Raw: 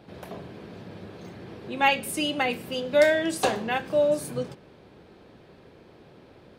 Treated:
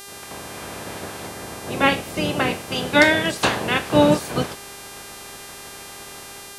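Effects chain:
ceiling on every frequency bin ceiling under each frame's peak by 18 dB
low-pass filter 2,200 Hz 6 dB per octave, from 0:01.27 1,100 Hz, from 0:02.72 4,000 Hz
automatic gain control gain up to 9 dB
hum with harmonics 400 Hz, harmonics 32, −40 dBFS −1 dB per octave

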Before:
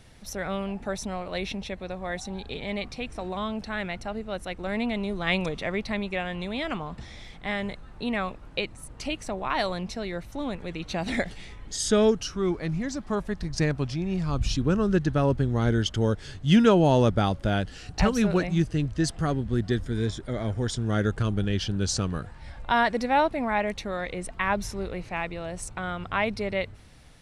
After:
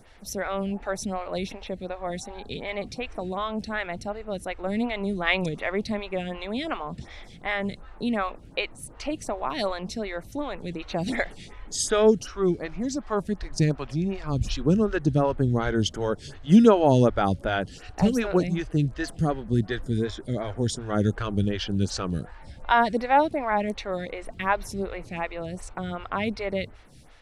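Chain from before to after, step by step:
phaser with staggered stages 2.7 Hz
level +4 dB

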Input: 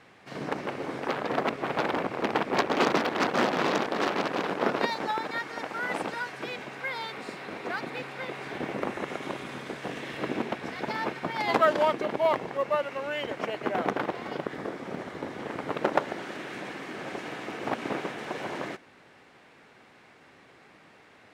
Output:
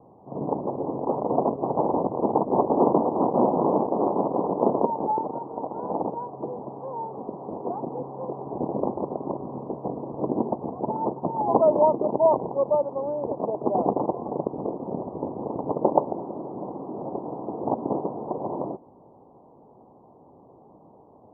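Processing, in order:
Butterworth low-pass 1,000 Hz 72 dB per octave
level +6 dB

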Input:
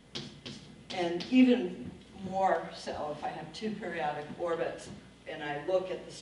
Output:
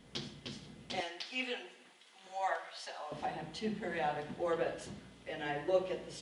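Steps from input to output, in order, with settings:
0:01.00–0:03.12: high-pass filter 960 Hz 12 dB per octave
level −1.5 dB

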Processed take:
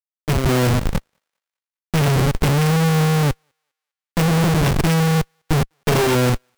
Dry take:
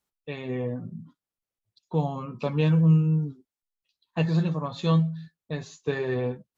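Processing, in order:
samples sorted by size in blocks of 16 samples
in parallel at −3 dB: brickwall limiter −22 dBFS, peak gain reduction 10.5 dB
on the sum: parametric band 150 Hz +4.5 dB 0.26 octaves
comparator with hysteresis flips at −28 dBFS
on a send: feedback echo with a high-pass in the loop 202 ms, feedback 39%, high-pass 850 Hz, level −16 dB
on the sum: expander for the loud parts 2.5 to 1, over −38 dBFS
level +8 dB

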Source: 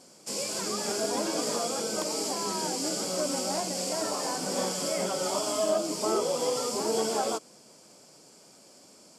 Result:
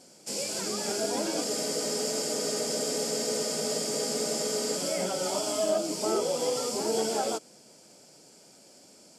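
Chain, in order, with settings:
parametric band 1,100 Hz −9.5 dB 0.26 octaves
frozen spectrum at 0:01.46, 3.31 s

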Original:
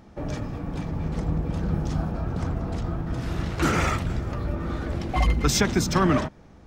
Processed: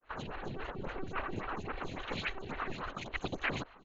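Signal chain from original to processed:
fade in at the beginning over 1.12 s
reverb reduction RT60 1 s
low-shelf EQ 460 Hz −8.5 dB
comb filter 1.6 ms, depth 73%
reversed playback
downward compressor 5 to 1, threshold −45 dBFS, peak gain reduction 22 dB
reversed playback
cochlear-implant simulation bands 8
Butterworth band-reject 3,000 Hz, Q 2.3
one-pitch LPC vocoder at 8 kHz 220 Hz
wrong playback speed 45 rpm record played at 78 rpm
phaser with staggered stages 3.6 Hz
level +14.5 dB

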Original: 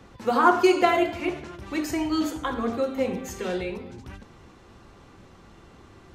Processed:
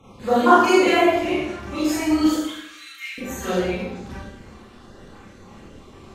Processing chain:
time-frequency cells dropped at random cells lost 31%
0:02.34–0:03.18: Butterworth high-pass 1,700 Hz 36 dB per octave
four-comb reverb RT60 0.79 s, combs from 29 ms, DRR −10 dB
level −2.5 dB

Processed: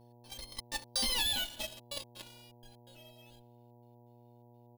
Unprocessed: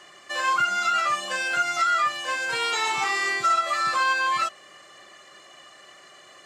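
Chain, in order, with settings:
lower of the sound and its delayed copy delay 0.32 ms
source passing by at 0:01.59, 34 m/s, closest 2.1 metres
dynamic equaliser 2,100 Hz, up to +5 dB, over −48 dBFS, Q 1.1
in parallel at −4.5 dB: fuzz pedal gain 38 dB, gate −47 dBFS
on the sum: parametric band 970 Hz −10.5 dB 0.98 octaves
feedback echo with a low-pass in the loop 77 ms, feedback 68%, low-pass 4,700 Hz, level −24 dB
gate pattern "x.xxx.x.xxxxxxx." 93 BPM −60 dB
comb filter 4.7 ms, depth 81%
wrong playback speed 33 rpm record played at 45 rpm
hum with harmonics 120 Hz, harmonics 8, −59 dBFS −4 dB per octave
bad sample-rate conversion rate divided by 3×, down filtered, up hold
downward compressor 8 to 1, threshold −30 dBFS, peak gain reduction 16 dB

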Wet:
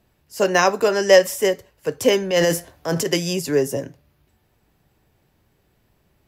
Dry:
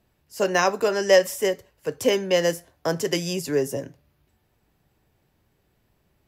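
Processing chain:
0:02.22–0:03.06: transient designer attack −7 dB, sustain +7 dB
level +4 dB

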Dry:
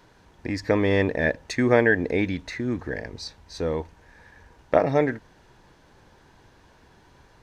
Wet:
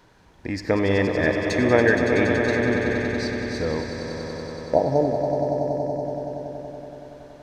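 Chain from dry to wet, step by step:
time-frequency box erased 0:04.73–0:06.04, 1,000–4,000 Hz
echo that builds up and dies away 94 ms, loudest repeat 5, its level −9 dB
on a send at −13 dB: convolution reverb RT60 1.3 s, pre-delay 37 ms

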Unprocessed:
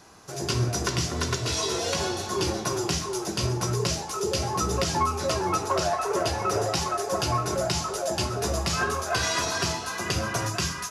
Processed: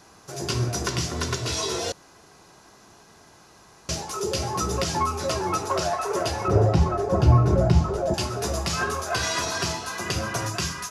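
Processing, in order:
0:01.92–0:03.89: fill with room tone
0:06.48–0:08.14: spectral tilt −4.5 dB per octave

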